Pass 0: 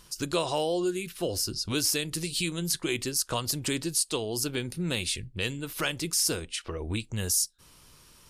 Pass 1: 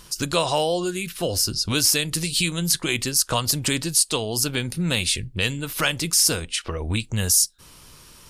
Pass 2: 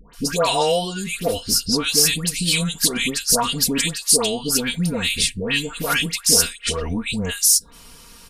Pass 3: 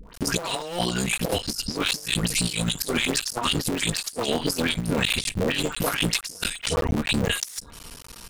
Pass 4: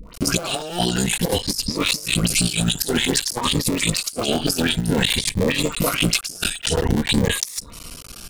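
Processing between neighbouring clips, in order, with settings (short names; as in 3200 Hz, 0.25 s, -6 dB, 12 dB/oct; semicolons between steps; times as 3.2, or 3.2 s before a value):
dynamic EQ 360 Hz, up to -7 dB, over -44 dBFS, Q 2; gain +8 dB
comb 4.3 ms, depth 77%; dispersion highs, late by 0.137 s, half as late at 1200 Hz; gain +1 dB
cycle switcher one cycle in 3, muted; negative-ratio compressor -25 dBFS, ratio -0.5
crackling interface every 0.27 s, samples 256, repeat, from 0.42; cascading phaser rising 0.52 Hz; gain +5.5 dB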